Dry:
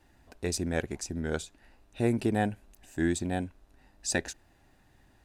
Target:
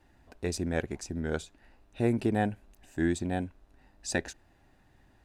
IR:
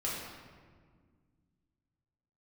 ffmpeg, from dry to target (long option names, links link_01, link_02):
-af "highshelf=frequency=4400:gain=-6.5"